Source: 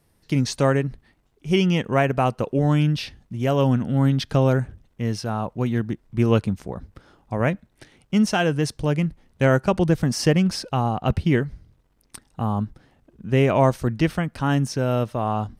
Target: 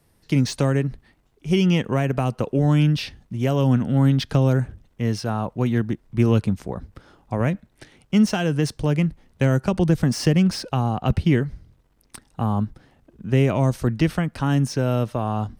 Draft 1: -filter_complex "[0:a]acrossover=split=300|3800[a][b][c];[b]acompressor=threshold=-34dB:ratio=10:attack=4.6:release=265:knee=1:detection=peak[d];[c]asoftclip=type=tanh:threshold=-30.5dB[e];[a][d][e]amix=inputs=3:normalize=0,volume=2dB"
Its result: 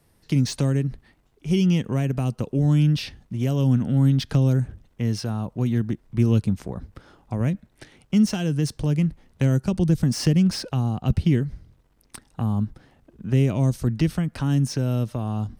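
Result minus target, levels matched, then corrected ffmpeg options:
compressor: peak gain reduction +10 dB
-filter_complex "[0:a]acrossover=split=300|3800[a][b][c];[b]acompressor=threshold=-23dB:ratio=10:attack=4.6:release=265:knee=1:detection=peak[d];[c]asoftclip=type=tanh:threshold=-30.5dB[e];[a][d][e]amix=inputs=3:normalize=0,volume=2dB"

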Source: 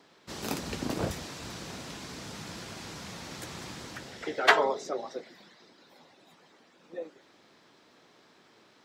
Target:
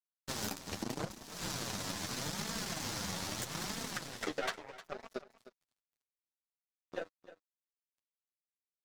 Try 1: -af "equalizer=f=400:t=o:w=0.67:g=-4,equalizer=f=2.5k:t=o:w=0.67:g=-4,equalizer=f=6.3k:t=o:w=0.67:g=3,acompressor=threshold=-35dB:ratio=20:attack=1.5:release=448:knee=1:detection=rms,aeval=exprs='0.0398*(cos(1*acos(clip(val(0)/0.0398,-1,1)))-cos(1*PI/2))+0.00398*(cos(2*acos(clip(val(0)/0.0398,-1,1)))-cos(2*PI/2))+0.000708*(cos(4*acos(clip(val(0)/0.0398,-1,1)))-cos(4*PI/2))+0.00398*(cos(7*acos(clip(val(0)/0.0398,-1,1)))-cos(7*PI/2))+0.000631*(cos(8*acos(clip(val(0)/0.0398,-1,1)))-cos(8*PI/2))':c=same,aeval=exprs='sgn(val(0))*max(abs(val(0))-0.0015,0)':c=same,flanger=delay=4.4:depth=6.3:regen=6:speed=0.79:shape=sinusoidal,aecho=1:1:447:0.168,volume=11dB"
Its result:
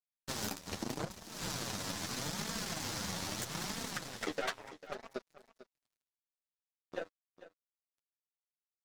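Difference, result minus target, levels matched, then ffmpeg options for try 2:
echo 0.14 s late
-af "equalizer=f=400:t=o:w=0.67:g=-4,equalizer=f=2.5k:t=o:w=0.67:g=-4,equalizer=f=6.3k:t=o:w=0.67:g=3,acompressor=threshold=-35dB:ratio=20:attack=1.5:release=448:knee=1:detection=rms,aeval=exprs='0.0398*(cos(1*acos(clip(val(0)/0.0398,-1,1)))-cos(1*PI/2))+0.00398*(cos(2*acos(clip(val(0)/0.0398,-1,1)))-cos(2*PI/2))+0.000708*(cos(4*acos(clip(val(0)/0.0398,-1,1)))-cos(4*PI/2))+0.00398*(cos(7*acos(clip(val(0)/0.0398,-1,1)))-cos(7*PI/2))+0.000631*(cos(8*acos(clip(val(0)/0.0398,-1,1)))-cos(8*PI/2))':c=same,aeval=exprs='sgn(val(0))*max(abs(val(0))-0.0015,0)':c=same,flanger=delay=4.4:depth=6.3:regen=6:speed=0.79:shape=sinusoidal,aecho=1:1:307:0.168,volume=11dB"

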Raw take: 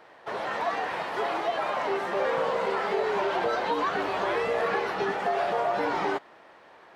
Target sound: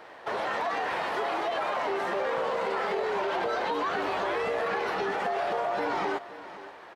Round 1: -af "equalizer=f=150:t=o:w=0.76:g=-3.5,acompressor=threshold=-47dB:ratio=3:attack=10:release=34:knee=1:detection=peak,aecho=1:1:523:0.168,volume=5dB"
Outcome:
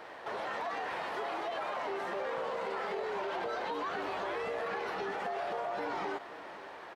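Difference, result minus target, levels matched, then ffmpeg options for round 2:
compressor: peak gain reduction +7 dB
-af "equalizer=f=150:t=o:w=0.76:g=-3.5,acompressor=threshold=-36.5dB:ratio=3:attack=10:release=34:knee=1:detection=peak,aecho=1:1:523:0.168,volume=5dB"

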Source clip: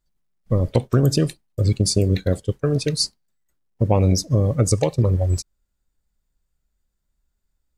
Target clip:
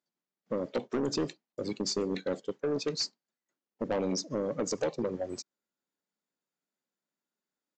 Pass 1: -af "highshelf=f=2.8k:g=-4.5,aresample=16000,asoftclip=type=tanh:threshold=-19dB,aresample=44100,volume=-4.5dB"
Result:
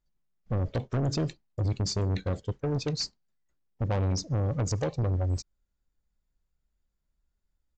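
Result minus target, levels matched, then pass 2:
250 Hz band -3.5 dB
-af "highpass=f=220:w=0.5412,highpass=f=220:w=1.3066,highshelf=f=2.8k:g=-4.5,aresample=16000,asoftclip=type=tanh:threshold=-19dB,aresample=44100,volume=-4.5dB"

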